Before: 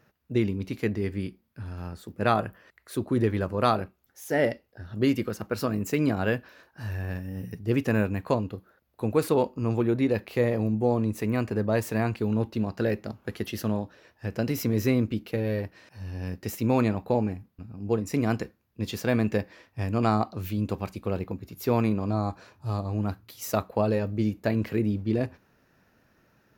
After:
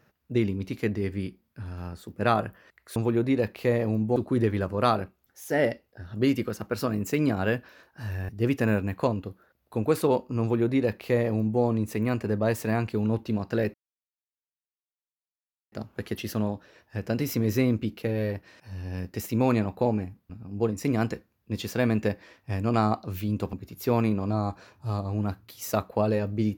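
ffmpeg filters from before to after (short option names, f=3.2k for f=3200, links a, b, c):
-filter_complex "[0:a]asplit=6[a][b][c][d][e][f];[a]atrim=end=2.962[g];[b]atrim=start=9.678:end=10.882[h];[c]atrim=start=2.958:end=7.092[i];[d]atrim=start=7.558:end=13.01,asetpts=PTS-STARTPTS,afade=t=out:st=5.448:d=0.004:c=hsin,apad=pad_dur=1.98[j];[e]atrim=start=13.01:end=20.822,asetpts=PTS-STARTPTS,afade=t=in:d=0.004:c=hsin[k];[f]atrim=start=21.328[l];[g][h]acrossfade=d=0.004:c1=hsin:c2=hsin[m];[m][i]acrossfade=d=0.004:c1=hsin:c2=hsin[n];[j][k]concat=n=2:v=0:a=1[o];[n][o]acrossfade=d=0.004:c1=hsin:c2=hsin[p];[p][l]acrossfade=d=0.004:c1=hsin:c2=hsin"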